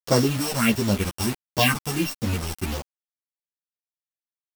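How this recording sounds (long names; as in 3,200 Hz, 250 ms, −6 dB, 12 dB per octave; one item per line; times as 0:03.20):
a buzz of ramps at a fixed pitch in blocks of 16 samples
phaser sweep stages 4, 1.5 Hz, lowest notch 310–2,900 Hz
a quantiser's noise floor 6 bits, dither none
a shimmering, thickened sound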